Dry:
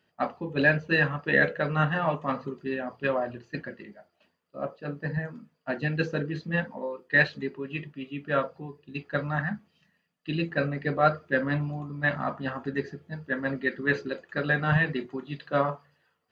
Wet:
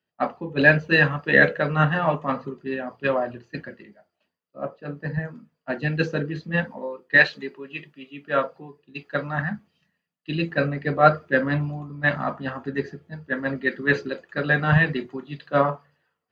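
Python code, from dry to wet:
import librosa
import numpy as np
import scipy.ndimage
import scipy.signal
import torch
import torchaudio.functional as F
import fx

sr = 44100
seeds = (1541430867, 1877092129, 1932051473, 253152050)

y = fx.highpass(x, sr, hz=fx.line((7.16, 420.0), (9.36, 170.0)), slope=6, at=(7.16, 9.36), fade=0.02)
y = fx.band_widen(y, sr, depth_pct=40)
y = y * librosa.db_to_amplitude(4.0)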